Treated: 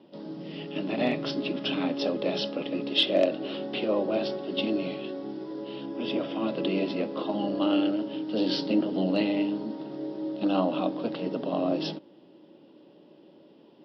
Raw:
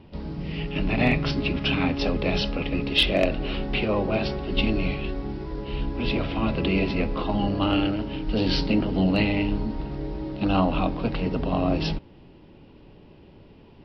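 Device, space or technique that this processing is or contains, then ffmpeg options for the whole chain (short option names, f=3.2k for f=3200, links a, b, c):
television speaker: -filter_complex "[0:a]highpass=f=180:w=0.5412,highpass=f=180:w=1.3066,equalizer=f=320:t=q:w=4:g=8,equalizer=f=570:t=q:w=4:g=9,equalizer=f=2.3k:t=q:w=4:g=-7,equalizer=f=3.4k:t=q:w=4:g=6,equalizer=f=5.2k:t=q:w=4:g=4,lowpass=f=8.1k:w=0.5412,lowpass=f=8.1k:w=1.3066,asettb=1/sr,asplit=3[a][b][c];[a]atrim=end=5.864[d];[b]atrim=start=5.86:end=6.4,asetpts=PTS-STARTPTS,afade=t=in:d=0.004:c=qsin,afade=t=out:st=0.536:d=0.004:c=qsin,bandreject=f=4.1k:w=5.6[e];[c]atrim=start=6.396[f];[d][e]acrossfade=d=0.004:c1=hsin:c2=qsin[g];[g][f]acrossfade=d=0.004:c1=qsin:c2=hsin,volume=-6.5dB"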